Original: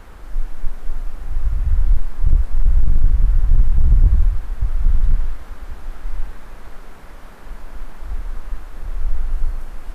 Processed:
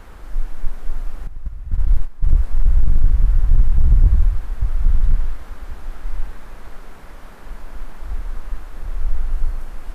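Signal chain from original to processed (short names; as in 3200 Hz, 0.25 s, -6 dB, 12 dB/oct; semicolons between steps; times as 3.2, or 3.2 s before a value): 1.27–2.31 gate -11 dBFS, range -12 dB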